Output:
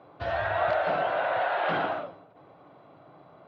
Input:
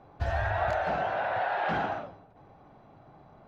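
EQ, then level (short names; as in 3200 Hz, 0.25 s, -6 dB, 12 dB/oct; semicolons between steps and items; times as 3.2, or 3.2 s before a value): speaker cabinet 210–4000 Hz, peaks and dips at 220 Hz -10 dB, 400 Hz -4 dB, 820 Hz -8 dB, 1700 Hz -6 dB, 2500 Hz -3 dB; +6.5 dB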